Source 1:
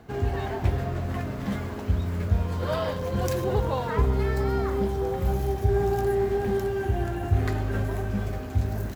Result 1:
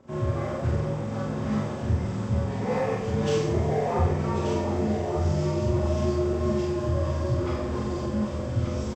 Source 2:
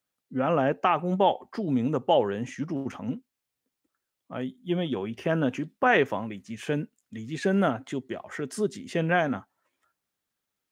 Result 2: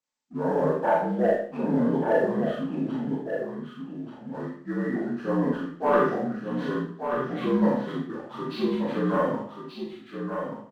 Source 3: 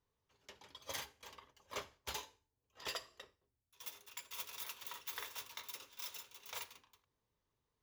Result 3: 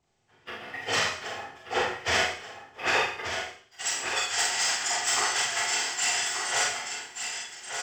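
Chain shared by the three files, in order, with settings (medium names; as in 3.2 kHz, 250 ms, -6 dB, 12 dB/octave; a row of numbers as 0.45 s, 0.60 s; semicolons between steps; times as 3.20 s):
frequency axis rescaled in octaves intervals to 78%; waveshaping leveller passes 1; on a send: delay 1182 ms -7 dB; on the sum: Schroeder reverb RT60 0.52 s, combs from 26 ms, DRR -2 dB; normalise loudness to -27 LUFS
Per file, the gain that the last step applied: -4.5 dB, -5.0 dB, +13.5 dB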